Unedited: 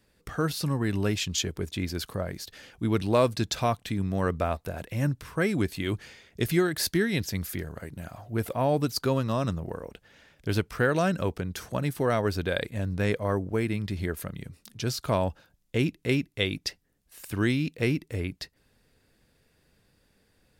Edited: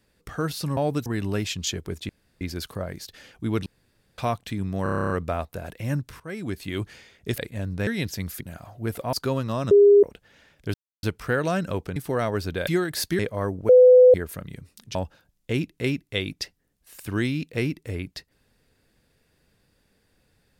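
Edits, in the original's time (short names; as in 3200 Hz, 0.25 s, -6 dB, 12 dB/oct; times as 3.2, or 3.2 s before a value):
1.8 insert room tone 0.32 s
3.05–3.57 room tone
4.22 stutter 0.03 s, 10 plays
5.32–5.86 fade in linear, from -15.5 dB
6.5–7.02 swap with 12.58–13.07
7.56–7.92 cut
8.64–8.93 move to 0.77
9.51–9.83 bleep 406 Hz -10 dBFS
10.54 insert silence 0.29 s
11.47–11.87 cut
13.57–14.02 bleep 503 Hz -8.5 dBFS
14.83–15.2 cut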